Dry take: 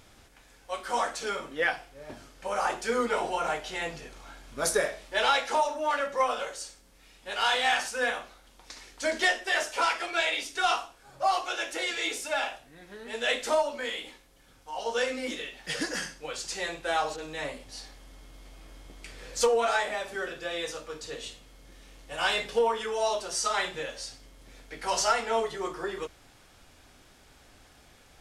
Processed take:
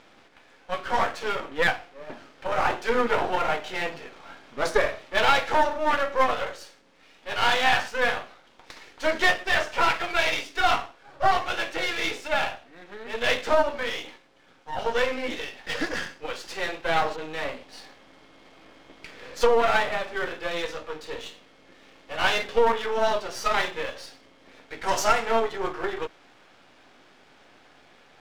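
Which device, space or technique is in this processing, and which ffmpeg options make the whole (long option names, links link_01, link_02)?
crystal radio: -filter_complex "[0:a]asettb=1/sr,asplit=3[link_01][link_02][link_03];[link_01]atrim=end=24.834[link_04];[link_02]atrim=start=24.83:end=25.27,asetpts=PTS-STARTPTS,afade=type=in:duration=0.004:curve=qsin,afade=type=out:start_time=0.436:duration=0.004:curve=qsin,highshelf=frequency=5500:width_type=q:width=1.5:gain=7.5[link_05];[link_03]atrim=start=25.266[link_06];[link_04][link_05]acrossfade=duration=0.004:curve1=hsin:curve2=qsin[link_07];[link_07][link_06]acrossfade=duration=0.004:curve1=qsin:curve2=hsin,highpass=220,lowpass=3300,aeval=exprs='if(lt(val(0),0),0.251*val(0),val(0))':channel_layout=same,volume=8dB"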